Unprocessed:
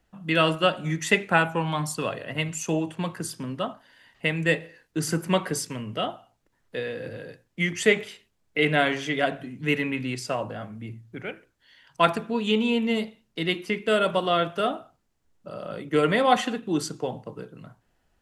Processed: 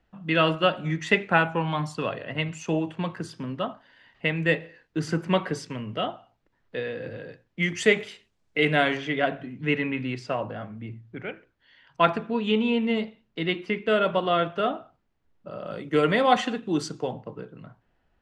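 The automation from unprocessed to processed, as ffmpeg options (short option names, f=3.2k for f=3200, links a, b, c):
-af "asetnsamples=n=441:p=0,asendcmd='7.63 lowpass f 7200;8.97 lowpass f 3300;15.66 lowpass f 6300;17.12 lowpass f 3200',lowpass=3.9k"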